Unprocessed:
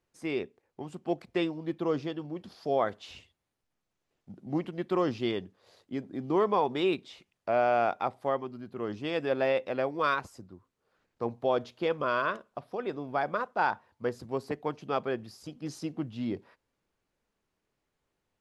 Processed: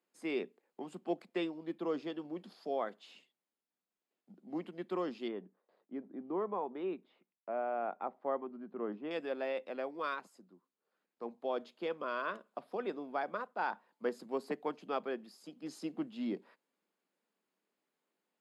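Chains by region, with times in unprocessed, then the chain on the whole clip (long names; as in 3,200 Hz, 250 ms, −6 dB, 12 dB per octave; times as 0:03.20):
0:05.28–0:09.11: low-pass filter 1,500 Hz + noise gate with hold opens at −54 dBFS, closes at −63 dBFS
whole clip: Butterworth high-pass 180 Hz 48 dB per octave; notch filter 5,800 Hz, Q 6.8; speech leveller within 4 dB 0.5 s; level −7 dB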